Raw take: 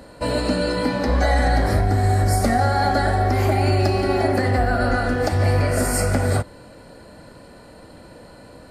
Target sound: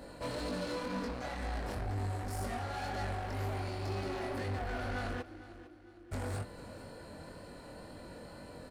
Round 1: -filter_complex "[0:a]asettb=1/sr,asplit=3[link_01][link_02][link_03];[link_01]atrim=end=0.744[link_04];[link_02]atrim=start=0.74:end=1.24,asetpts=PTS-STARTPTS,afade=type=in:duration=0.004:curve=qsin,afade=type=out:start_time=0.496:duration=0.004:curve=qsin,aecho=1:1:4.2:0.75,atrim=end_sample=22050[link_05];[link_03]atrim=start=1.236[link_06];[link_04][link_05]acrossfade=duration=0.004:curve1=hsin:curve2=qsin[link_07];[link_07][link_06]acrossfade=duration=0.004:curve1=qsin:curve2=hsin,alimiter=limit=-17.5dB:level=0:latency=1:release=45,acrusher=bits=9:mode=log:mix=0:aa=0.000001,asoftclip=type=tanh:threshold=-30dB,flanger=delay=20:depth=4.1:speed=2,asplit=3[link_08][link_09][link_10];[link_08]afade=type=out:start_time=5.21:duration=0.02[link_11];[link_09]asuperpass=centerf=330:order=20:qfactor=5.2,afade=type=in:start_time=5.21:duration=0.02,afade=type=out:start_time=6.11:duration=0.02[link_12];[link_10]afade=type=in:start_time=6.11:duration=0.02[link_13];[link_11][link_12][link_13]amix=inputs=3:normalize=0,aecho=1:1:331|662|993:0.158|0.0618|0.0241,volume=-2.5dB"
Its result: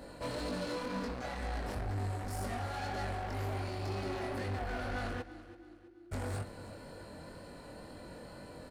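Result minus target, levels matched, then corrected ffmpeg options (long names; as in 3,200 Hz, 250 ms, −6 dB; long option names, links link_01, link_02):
echo 121 ms early
-filter_complex "[0:a]asettb=1/sr,asplit=3[link_01][link_02][link_03];[link_01]atrim=end=0.744[link_04];[link_02]atrim=start=0.74:end=1.24,asetpts=PTS-STARTPTS,afade=type=in:duration=0.004:curve=qsin,afade=type=out:start_time=0.496:duration=0.004:curve=qsin,aecho=1:1:4.2:0.75,atrim=end_sample=22050[link_05];[link_03]atrim=start=1.236[link_06];[link_04][link_05]acrossfade=duration=0.004:curve1=hsin:curve2=qsin[link_07];[link_07][link_06]acrossfade=duration=0.004:curve1=qsin:curve2=hsin,alimiter=limit=-17.5dB:level=0:latency=1:release=45,acrusher=bits=9:mode=log:mix=0:aa=0.000001,asoftclip=type=tanh:threshold=-30dB,flanger=delay=20:depth=4.1:speed=2,asplit=3[link_08][link_09][link_10];[link_08]afade=type=out:start_time=5.21:duration=0.02[link_11];[link_09]asuperpass=centerf=330:order=20:qfactor=5.2,afade=type=in:start_time=5.21:duration=0.02,afade=type=out:start_time=6.11:duration=0.02[link_12];[link_10]afade=type=in:start_time=6.11:duration=0.02[link_13];[link_11][link_12][link_13]amix=inputs=3:normalize=0,aecho=1:1:452|904|1356:0.158|0.0618|0.0241,volume=-2.5dB"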